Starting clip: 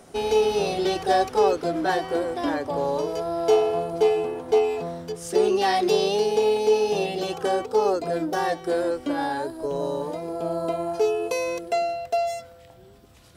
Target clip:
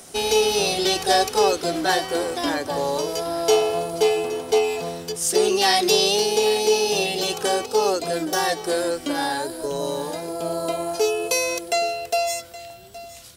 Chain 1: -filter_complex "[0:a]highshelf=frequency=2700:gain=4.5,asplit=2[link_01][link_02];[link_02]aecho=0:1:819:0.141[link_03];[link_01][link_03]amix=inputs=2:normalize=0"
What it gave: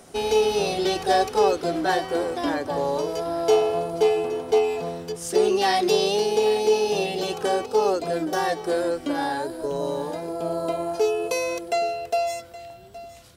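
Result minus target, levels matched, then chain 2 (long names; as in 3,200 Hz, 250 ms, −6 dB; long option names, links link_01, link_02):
4,000 Hz band −5.5 dB
-filter_complex "[0:a]highshelf=frequency=2700:gain=16,asplit=2[link_01][link_02];[link_02]aecho=0:1:819:0.141[link_03];[link_01][link_03]amix=inputs=2:normalize=0"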